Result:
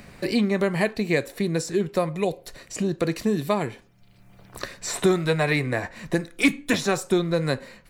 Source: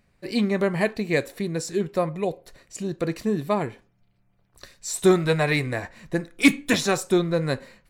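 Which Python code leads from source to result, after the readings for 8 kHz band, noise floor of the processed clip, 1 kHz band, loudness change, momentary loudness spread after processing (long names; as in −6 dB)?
−1.0 dB, −54 dBFS, −0.5 dB, −0.5 dB, 8 LU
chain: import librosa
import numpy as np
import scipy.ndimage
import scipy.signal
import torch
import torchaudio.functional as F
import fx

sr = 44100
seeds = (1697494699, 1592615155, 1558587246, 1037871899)

y = fx.band_squash(x, sr, depth_pct=70)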